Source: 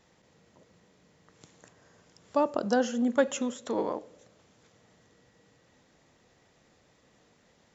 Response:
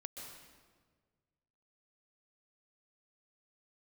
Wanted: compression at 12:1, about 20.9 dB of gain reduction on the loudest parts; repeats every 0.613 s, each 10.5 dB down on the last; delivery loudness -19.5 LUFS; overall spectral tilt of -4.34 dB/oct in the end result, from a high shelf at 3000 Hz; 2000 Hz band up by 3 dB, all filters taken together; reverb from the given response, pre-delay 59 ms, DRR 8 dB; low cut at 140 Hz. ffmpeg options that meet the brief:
-filter_complex "[0:a]highpass=140,equalizer=f=2k:t=o:g=5.5,highshelf=f=3k:g=-3.5,acompressor=threshold=-41dB:ratio=12,aecho=1:1:613|1226|1839:0.299|0.0896|0.0269,asplit=2[a][b];[1:a]atrim=start_sample=2205,adelay=59[c];[b][c]afir=irnorm=-1:irlink=0,volume=-5dB[d];[a][d]amix=inputs=2:normalize=0,volume=28.5dB"

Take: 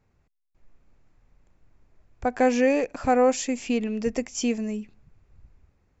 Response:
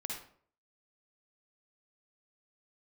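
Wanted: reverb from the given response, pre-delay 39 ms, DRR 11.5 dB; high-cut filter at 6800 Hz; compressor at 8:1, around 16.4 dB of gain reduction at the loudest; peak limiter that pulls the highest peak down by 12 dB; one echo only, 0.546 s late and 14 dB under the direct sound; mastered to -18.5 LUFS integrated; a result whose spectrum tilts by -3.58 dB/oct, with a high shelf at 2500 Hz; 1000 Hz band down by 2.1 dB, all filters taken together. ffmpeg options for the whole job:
-filter_complex "[0:a]lowpass=6.8k,equalizer=f=1k:t=o:g=-4.5,highshelf=f=2.5k:g=8,acompressor=threshold=-34dB:ratio=8,alimiter=level_in=10.5dB:limit=-24dB:level=0:latency=1,volume=-10.5dB,aecho=1:1:546:0.2,asplit=2[a][b];[1:a]atrim=start_sample=2205,adelay=39[c];[b][c]afir=irnorm=-1:irlink=0,volume=-12dB[d];[a][d]amix=inputs=2:normalize=0,volume=24.5dB"

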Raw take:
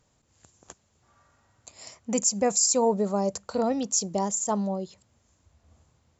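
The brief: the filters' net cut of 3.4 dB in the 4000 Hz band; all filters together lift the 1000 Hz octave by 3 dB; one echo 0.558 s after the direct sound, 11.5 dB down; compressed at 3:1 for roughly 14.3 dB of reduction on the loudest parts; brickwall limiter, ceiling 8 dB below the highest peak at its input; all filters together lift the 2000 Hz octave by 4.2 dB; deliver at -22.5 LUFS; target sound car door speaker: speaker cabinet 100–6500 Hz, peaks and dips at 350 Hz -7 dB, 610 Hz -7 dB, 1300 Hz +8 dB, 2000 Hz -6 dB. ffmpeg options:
-af "equalizer=f=1k:t=o:g=3,equalizer=f=2k:t=o:g=7,equalizer=f=4k:t=o:g=-5.5,acompressor=threshold=-38dB:ratio=3,alimiter=level_in=6dB:limit=-24dB:level=0:latency=1,volume=-6dB,highpass=100,equalizer=f=350:t=q:w=4:g=-7,equalizer=f=610:t=q:w=4:g=-7,equalizer=f=1.3k:t=q:w=4:g=8,equalizer=f=2k:t=q:w=4:g=-6,lowpass=f=6.5k:w=0.5412,lowpass=f=6.5k:w=1.3066,aecho=1:1:558:0.266,volume=20dB"

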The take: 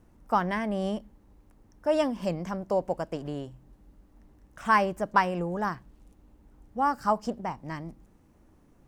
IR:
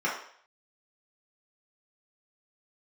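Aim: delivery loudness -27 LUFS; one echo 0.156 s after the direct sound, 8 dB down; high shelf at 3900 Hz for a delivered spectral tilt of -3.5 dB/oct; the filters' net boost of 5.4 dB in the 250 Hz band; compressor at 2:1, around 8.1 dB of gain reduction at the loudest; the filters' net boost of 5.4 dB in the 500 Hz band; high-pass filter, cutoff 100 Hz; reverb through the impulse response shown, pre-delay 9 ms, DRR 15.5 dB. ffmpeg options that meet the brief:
-filter_complex "[0:a]highpass=100,equalizer=f=250:t=o:g=6,equalizer=f=500:t=o:g=5.5,highshelf=f=3.9k:g=5.5,acompressor=threshold=-30dB:ratio=2,aecho=1:1:156:0.398,asplit=2[a][b];[1:a]atrim=start_sample=2205,adelay=9[c];[b][c]afir=irnorm=-1:irlink=0,volume=-26.5dB[d];[a][d]amix=inputs=2:normalize=0,volume=4dB"

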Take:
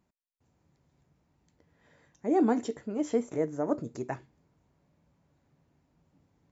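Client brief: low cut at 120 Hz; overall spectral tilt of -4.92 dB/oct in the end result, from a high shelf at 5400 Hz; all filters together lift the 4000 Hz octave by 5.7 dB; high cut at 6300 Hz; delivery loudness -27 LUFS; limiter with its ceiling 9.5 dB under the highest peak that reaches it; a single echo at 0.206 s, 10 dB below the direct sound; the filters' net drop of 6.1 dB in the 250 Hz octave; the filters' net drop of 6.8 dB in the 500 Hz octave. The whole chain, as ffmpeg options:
-af "highpass=120,lowpass=6.3k,equalizer=f=250:t=o:g=-5,equalizer=f=500:t=o:g=-7,equalizer=f=4k:t=o:g=7,highshelf=f=5.4k:g=4,alimiter=level_in=4dB:limit=-24dB:level=0:latency=1,volume=-4dB,aecho=1:1:206:0.316,volume=12.5dB"

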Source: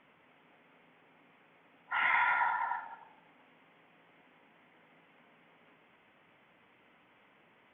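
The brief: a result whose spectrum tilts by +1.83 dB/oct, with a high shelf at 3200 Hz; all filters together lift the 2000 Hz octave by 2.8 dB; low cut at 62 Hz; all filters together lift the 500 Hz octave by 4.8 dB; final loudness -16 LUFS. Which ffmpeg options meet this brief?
-af "highpass=62,equalizer=f=500:t=o:g=7,equalizer=f=2k:t=o:g=5,highshelf=f=3.2k:g=-7.5,volume=12.5dB"

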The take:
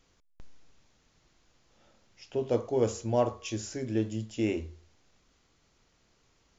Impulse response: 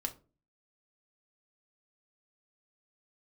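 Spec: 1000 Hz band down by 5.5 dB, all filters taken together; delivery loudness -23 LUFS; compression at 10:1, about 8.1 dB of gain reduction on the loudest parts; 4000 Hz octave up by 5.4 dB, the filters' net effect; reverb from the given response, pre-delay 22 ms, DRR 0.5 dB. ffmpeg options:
-filter_complex "[0:a]equalizer=f=1k:t=o:g=-8.5,equalizer=f=4k:t=o:g=8.5,acompressor=threshold=-31dB:ratio=10,asplit=2[a][b];[1:a]atrim=start_sample=2205,adelay=22[c];[b][c]afir=irnorm=-1:irlink=0,volume=-1dB[d];[a][d]amix=inputs=2:normalize=0,volume=11.5dB"

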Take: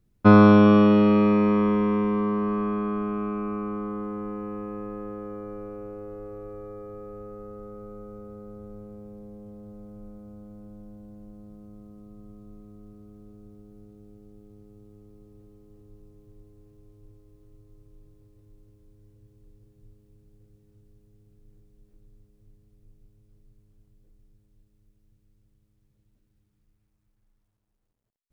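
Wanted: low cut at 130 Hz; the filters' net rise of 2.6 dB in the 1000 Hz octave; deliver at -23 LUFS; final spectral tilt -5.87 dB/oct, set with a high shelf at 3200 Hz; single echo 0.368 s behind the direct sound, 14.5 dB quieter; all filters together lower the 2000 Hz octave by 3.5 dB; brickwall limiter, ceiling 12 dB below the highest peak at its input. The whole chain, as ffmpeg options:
-af "highpass=130,equalizer=f=1k:t=o:g=6,equalizer=f=2k:t=o:g=-8,highshelf=f=3.2k:g=-6,alimiter=limit=-15dB:level=0:latency=1,aecho=1:1:368:0.188,volume=4.5dB"

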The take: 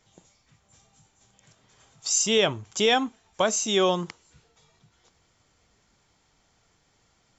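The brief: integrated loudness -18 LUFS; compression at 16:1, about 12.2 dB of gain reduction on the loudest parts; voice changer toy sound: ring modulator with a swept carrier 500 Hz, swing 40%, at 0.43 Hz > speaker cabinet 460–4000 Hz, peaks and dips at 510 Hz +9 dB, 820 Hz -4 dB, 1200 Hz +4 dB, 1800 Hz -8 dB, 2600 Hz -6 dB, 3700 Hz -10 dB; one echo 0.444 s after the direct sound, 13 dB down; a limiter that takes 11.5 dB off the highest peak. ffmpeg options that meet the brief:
-af "acompressor=threshold=-29dB:ratio=16,alimiter=level_in=3.5dB:limit=-24dB:level=0:latency=1,volume=-3.5dB,aecho=1:1:444:0.224,aeval=exprs='val(0)*sin(2*PI*500*n/s+500*0.4/0.43*sin(2*PI*0.43*n/s))':c=same,highpass=460,equalizer=f=510:t=q:w=4:g=9,equalizer=f=820:t=q:w=4:g=-4,equalizer=f=1.2k:t=q:w=4:g=4,equalizer=f=1.8k:t=q:w=4:g=-8,equalizer=f=2.6k:t=q:w=4:g=-6,equalizer=f=3.7k:t=q:w=4:g=-10,lowpass=f=4k:w=0.5412,lowpass=f=4k:w=1.3066,volume=27dB"

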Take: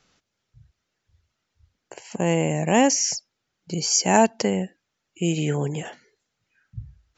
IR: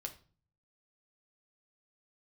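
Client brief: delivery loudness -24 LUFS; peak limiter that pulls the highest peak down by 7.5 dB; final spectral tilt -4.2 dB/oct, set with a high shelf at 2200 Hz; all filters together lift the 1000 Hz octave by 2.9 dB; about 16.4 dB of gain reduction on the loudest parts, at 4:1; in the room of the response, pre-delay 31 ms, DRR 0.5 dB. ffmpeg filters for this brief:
-filter_complex "[0:a]equalizer=f=1k:t=o:g=4.5,highshelf=f=2.2k:g=-4,acompressor=threshold=-31dB:ratio=4,alimiter=level_in=1dB:limit=-24dB:level=0:latency=1,volume=-1dB,asplit=2[a][b];[1:a]atrim=start_sample=2205,adelay=31[c];[b][c]afir=irnorm=-1:irlink=0,volume=2dB[d];[a][d]amix=inputs=2:normalize=0,volume=10dB"

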